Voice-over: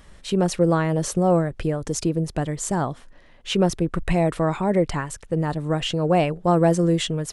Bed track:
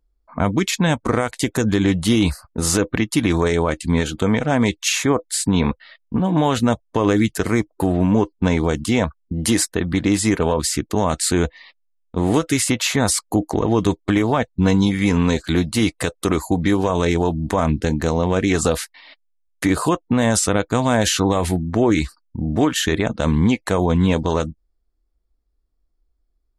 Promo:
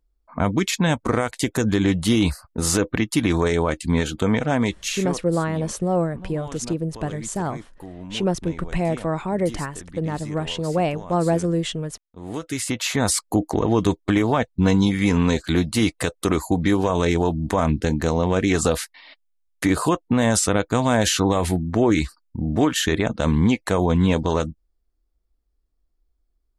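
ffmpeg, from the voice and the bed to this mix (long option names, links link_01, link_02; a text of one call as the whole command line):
ffmpeg -i stem1.wav -i stem2.wav -filter_complex "[0:a]adelay=4650,volume=-2.5dB[link_01];[1:a]volume=16dB,afade=type=out:start_time=4.45:duration=0.83:silence=0.133352,afade=type=in:start_time=12.19:duration=0.98:silence=0.125893[link_02];[link_01][link_02]amix=inputs=2:normalize=0" out.wav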